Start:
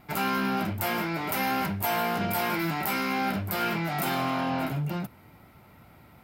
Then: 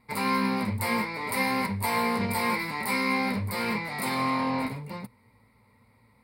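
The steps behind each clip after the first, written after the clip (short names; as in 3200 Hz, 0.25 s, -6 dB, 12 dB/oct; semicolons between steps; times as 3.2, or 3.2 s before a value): ripple EQ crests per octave 0.94, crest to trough 14 dB; upward expander 1.5:1, over -45 dBFS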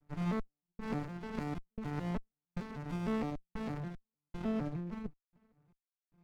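arpeggiated vocoder minor triad, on D3, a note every 0.153 s; step gate "xx..xxxx." 76 bpm -60 dB; running maximum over 65 samples; gain -4 dB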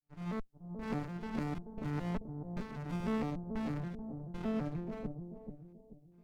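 opening faded in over 0.52 s; on a send: analogue delay 0.433 s, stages 2048, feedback 38%, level -5.5 dB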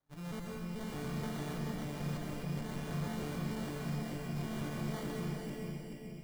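tube stage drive 48 dB, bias 0.3; sample-and-hold 17×; plate-style reverb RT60 1.9 s, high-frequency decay 0.75×, pre-delay 0.115 s, DRR -2 dB; gain +7 dB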